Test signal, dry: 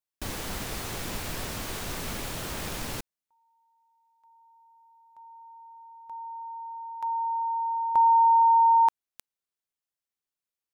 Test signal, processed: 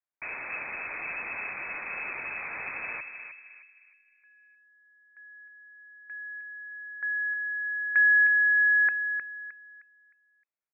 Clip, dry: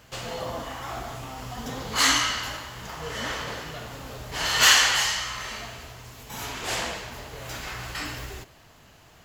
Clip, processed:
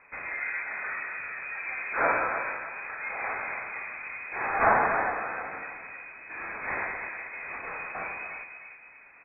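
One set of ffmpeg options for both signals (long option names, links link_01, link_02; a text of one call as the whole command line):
ffmpeg -i in.wav -filter_complex "[0:a]equalizer=frequency=68:width_type=o:width=2.2:gain=-5.5,asplit=2[link_01][link_02];[link_02]adelay=309,lowpass=frequency=990:poles=1,volume=-6dB,asplit=2[link_03][link_04];[link_04]adelay=309,lowpass=frequency=990:poles=1,volume=0.42,asplit=2[link_05][link_06];[link_06]adelay=309,lowpass=frequency=990:poles=1,volume=0.42,asplit=2[link_07][link_08];[link_08]adelay=309,lowpass=frequency=990:poles=1,volume=0.42,asplit=2[link_09][link_10];[link_10]adelay=309,lowpass=frequency=990:poles=1,volume=0.42[link_11];[link_01][link_03][link_05][link_07][link_09][link_11]amix=inputs=6:normalize=0,lowpass=frequency=2200:width_type=q:width=0.5098,lowpass=frequency=2200:width_type=q:width=0.6013,lowpass=frequency=2200:width_type=q:width=0.9,lowpass=frequency=2200:width_type=q:width=2.563,afreqshift=-2600" out.wav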